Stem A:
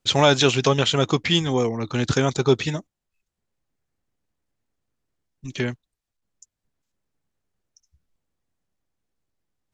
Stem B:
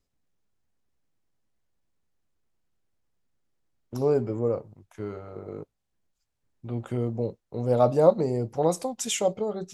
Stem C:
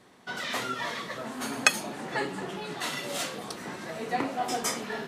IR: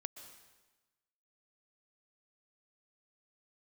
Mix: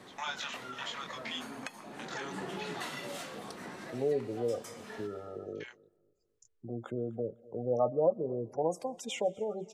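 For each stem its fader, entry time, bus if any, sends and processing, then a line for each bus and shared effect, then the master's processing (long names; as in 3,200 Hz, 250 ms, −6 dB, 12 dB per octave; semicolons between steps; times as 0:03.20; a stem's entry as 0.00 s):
−15.0 dB, 0.00 s, no send, no echo send, Butterworth high-pass 830 Hz; gate pattern ".xx.xxxx.x" 83 BPM −24 dB; chorus effect 0.24 Hz, delay 19 ms, depth 7.5 ms
−5.5 dB, 0.00 s, send −14.5 dB, echo send −24 dB, high-shelf EQ 4,800 Hz +5.5 dB; gate on every frequency bin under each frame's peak −20 dB strong; bass and treble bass −8 dB, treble −14 dB
0:02.11 −7.5 dB → 0:02.32 −1 dB, 0.00 s, send −6.5 dB, no echo send, downward compressor 4 to 1, threshold −41 dBFS, peak gain reduction 21.5 dB; automatic ducking −14 dB, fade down 1.10 s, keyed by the second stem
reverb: on, RT60 1.2 s, pre-delay 113 ms
echo: repeating echo 250 ms, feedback 22%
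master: multiband upward and downward compressor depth 40%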